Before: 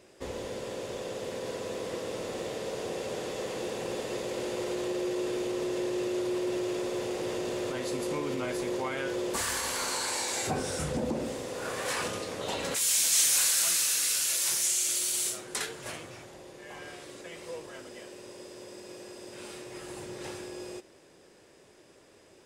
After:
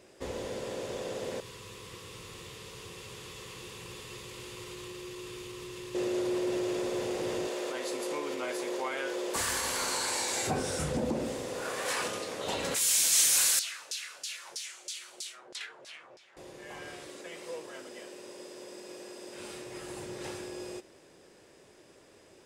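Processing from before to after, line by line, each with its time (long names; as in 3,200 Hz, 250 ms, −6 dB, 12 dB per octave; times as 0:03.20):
0:01.40–0:05.95: drawn EQ curve 100 Hz 0 dB, 160 Hz −5 dB, 260 Hz −17 dB, 390 Hz −11 dB, 660 Hz −25 dB, 1,100 Hz −3 dB, 1,500 Hz −10 dB, 2,700 Hz −2 dB, 6,300 Hz −5 dB, 14,000 Hz 0 dB
0:07.47–0:09.36: high-pass filter 380 Hz
0:11.62–0:12.46: low-shelf EQ 150 Hz −12 dB
0:13.59–0:16.37: auto-filter band-pass saw down 3.1 Hz 470–5,200 Hz
0:17.09–0:19.38: high-pass filter 200 Hz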